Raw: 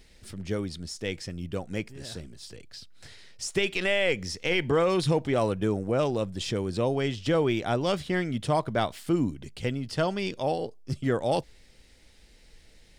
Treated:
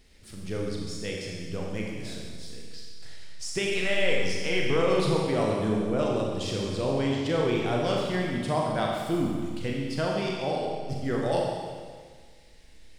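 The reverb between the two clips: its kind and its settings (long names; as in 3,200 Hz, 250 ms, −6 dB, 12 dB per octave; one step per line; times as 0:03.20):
four-comb reverb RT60 1.7 s, combs from 29 ms, DRR −2 dB
level −4 dB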